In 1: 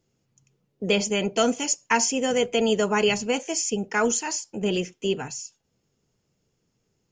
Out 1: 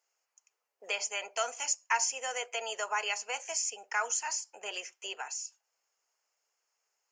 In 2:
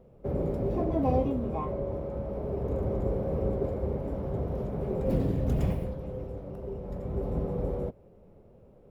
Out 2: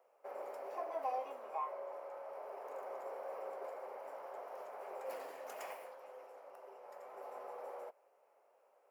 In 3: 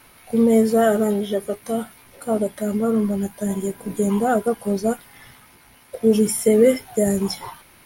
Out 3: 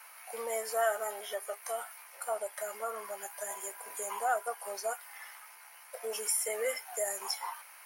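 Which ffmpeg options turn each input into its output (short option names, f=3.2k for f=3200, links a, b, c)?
-filter_complex "[0:a]highpass=f=740:w=0.5412,highpass=f=740:w=1.3066,equalizer=f=3.6k:t=o:w=0.44:g=-11,asplit=2[a][b];[b]acompressor=threshold=-36dB:ratio=6,volume=2dB[c];[a][c]amix=inputs=2:normalize=0,volume=-7.5dB"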